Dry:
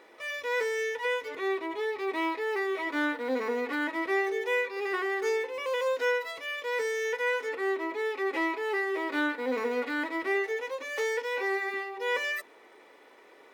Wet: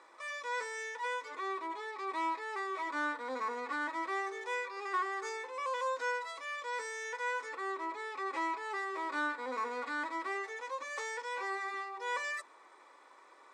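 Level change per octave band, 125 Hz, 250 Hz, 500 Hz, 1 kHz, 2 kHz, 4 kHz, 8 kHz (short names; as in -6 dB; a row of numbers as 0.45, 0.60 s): n/a, -12.0 dB, -12.0 dB, -0.5 dB, -6.5 dB, -8.0 dB, -2.5 dB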